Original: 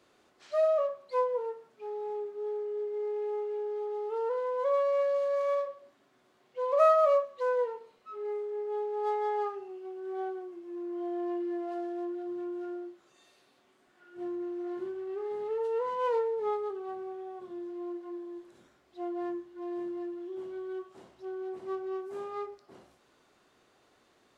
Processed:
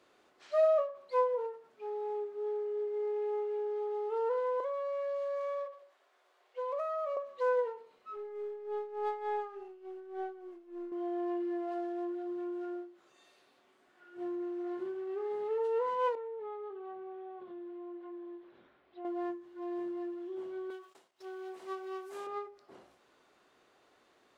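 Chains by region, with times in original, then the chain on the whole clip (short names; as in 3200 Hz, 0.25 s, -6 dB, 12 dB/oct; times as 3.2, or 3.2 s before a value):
4.6–7.17 HPF 460 Hz 24 dB/oct + compressor 12:1, threshold -32 dBFS
8.16–10.92 half-wave gain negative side -3 dB + tremolo 3.4 Hz, depth 67%
16.15–19.05 LPF 3700 Hz 24 dB/oct + compressor 3:1, threshold -42 dBFS
20.7–22.27 gate -56 dBFS, range -30 dB + tilt +3.5 dB/oct + upward compressor, threshold -47 dBFS
whole clip: tone controls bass -7 dB, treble -4 dB; ending taper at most 130 dB/s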